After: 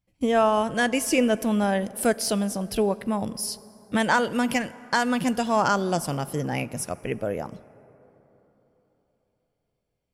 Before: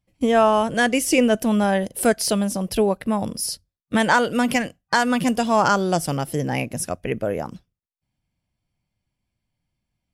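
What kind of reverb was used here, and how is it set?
plate-style reverb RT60 3.9 s, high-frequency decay 0.45×, DRR 18 dB; gain -4 dB

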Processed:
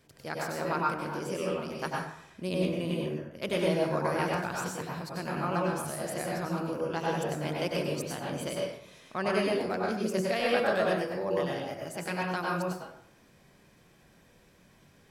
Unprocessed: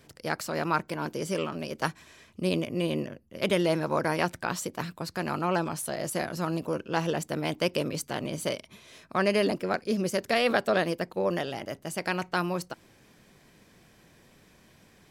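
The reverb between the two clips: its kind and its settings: plate-style reverb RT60 0.68 s, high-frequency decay 0.55×, pre-delay 85 ms, DRR -3 dB; gain -7 dB

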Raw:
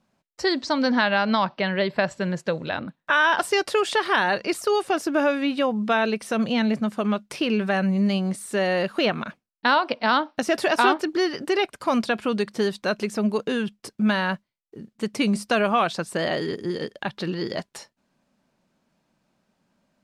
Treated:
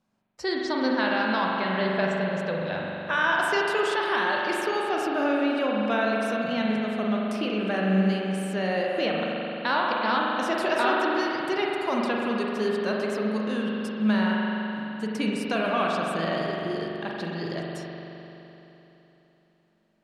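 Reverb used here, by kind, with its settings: spring tank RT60 3.5 s, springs 42 ms, chirp 25 ms, DRR -2.5 dB; gain -7 dB

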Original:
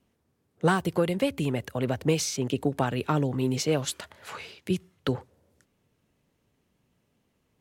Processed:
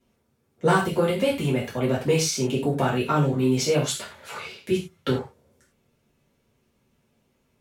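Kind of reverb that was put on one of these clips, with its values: non-linear reverb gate 0.13 s falling, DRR -7 dB; gain -3.5 dB

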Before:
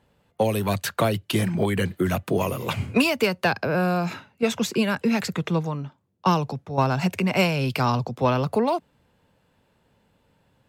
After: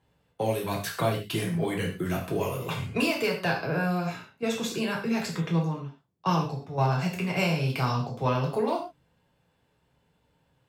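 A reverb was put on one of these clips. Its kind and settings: non-linear reverb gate 0.16 s falling, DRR -1.5 dB; gain -8.5 dB

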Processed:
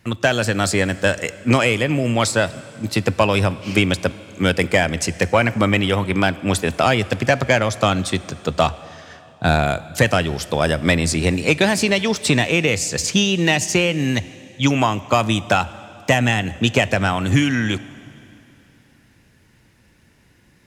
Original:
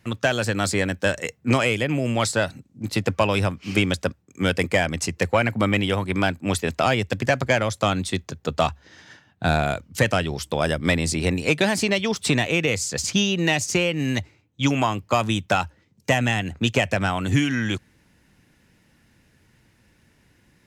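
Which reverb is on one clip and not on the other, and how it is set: plate-style reverb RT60 3 s, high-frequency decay 0.95×, DRR 16.5 dB; gain +4 dB

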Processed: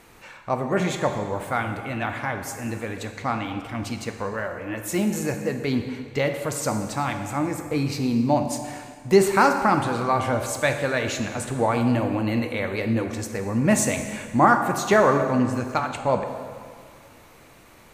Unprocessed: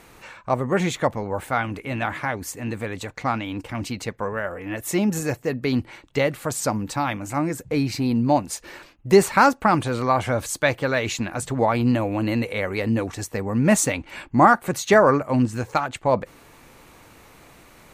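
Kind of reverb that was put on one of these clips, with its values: plate-style reverb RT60 2 s, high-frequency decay 0.75×, DRR 5 dB; gain -2.5 dB

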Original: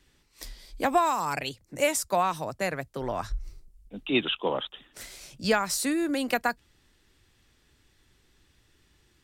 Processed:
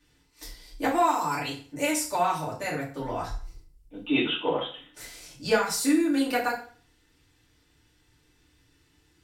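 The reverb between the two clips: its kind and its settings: FDN reverb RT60 0.44 s, low-frequency decay 1×, high-frequency decay 0.9×, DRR -6.5 dB; gain -7 dB

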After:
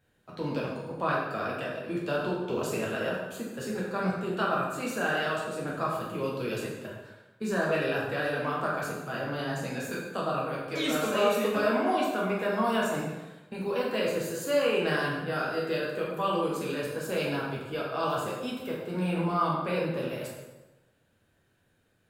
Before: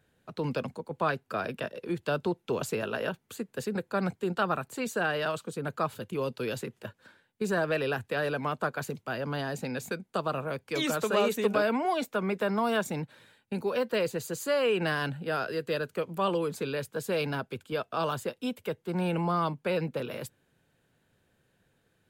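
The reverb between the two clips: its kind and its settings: plate-style reverb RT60 1.1 s, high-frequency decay 0.75×, DRR -5 dB; gain -5 dB

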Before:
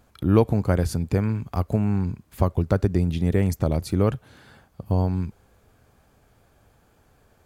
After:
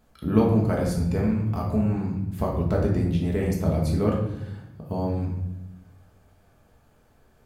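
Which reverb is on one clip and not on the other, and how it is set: shoebox room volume 290 m³, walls mixed, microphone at 1.5 m; gain -6 dB

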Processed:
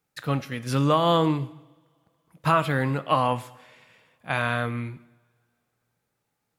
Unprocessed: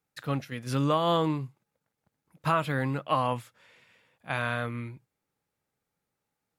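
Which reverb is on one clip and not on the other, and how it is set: two-slope reverb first 0.89 s, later 3.1 s, from -26 dB, DRR 13.5 dB; gain +4.5 dB

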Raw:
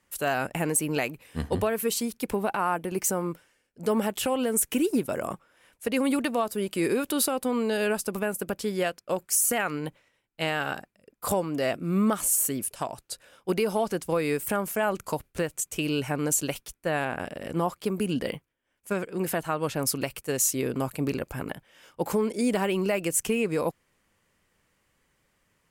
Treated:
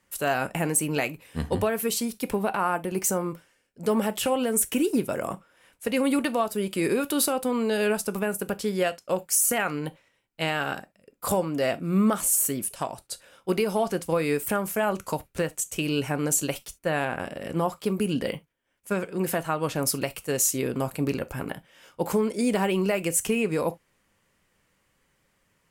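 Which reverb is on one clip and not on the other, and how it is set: non-linear reverb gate 90 ms falling, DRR 11.5 dB; gain +1 dB

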